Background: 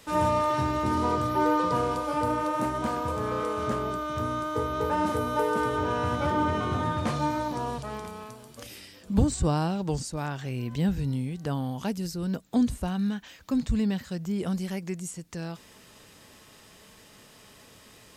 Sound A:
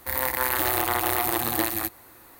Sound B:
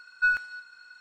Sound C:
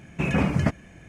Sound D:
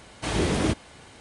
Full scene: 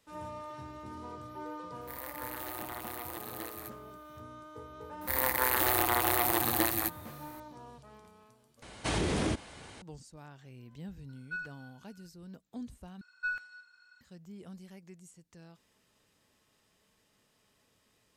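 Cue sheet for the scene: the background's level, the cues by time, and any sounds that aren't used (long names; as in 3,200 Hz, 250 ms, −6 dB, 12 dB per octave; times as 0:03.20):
background −18.5 dB
0:01.81: mix in A −17.5 dB
0:05.01: mix in A −3.5 dB
0:08.62: overwrite with D −1 dB + downward compressor, threshold −25 dBFS
0:11.09: mix in B −15.5 dB
0:13.01: overwrite with B −11 dB
not used: C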